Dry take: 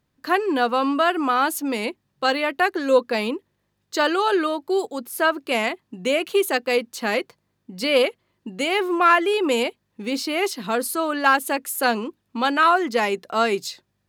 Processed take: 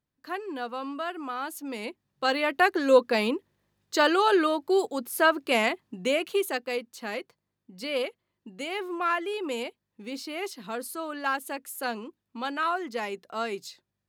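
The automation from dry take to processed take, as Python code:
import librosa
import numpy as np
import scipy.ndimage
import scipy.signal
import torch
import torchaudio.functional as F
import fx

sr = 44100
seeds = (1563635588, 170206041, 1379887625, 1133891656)

y = fx.gain(x, sr, db=fx.line((1.42, -13.5), (2.61, -1.5), (5.81, -1.5), (6.87, -11.0)))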